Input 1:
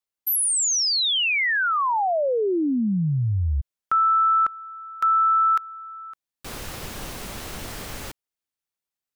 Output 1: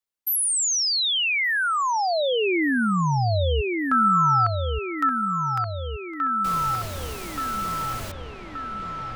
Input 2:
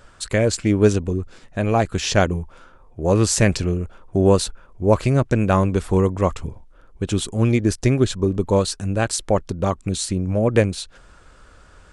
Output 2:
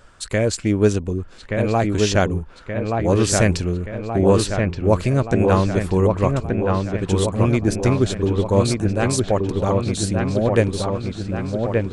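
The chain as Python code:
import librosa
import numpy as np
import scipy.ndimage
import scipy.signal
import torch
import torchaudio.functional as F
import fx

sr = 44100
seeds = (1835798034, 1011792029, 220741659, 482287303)

y = fx.echo_wet_lowpass(x, sr, ms=1176, feedback_pct=59, hz=2900.0, wet_db=-3.5)
y = y * librosa.db_to_amplitude(-1.0)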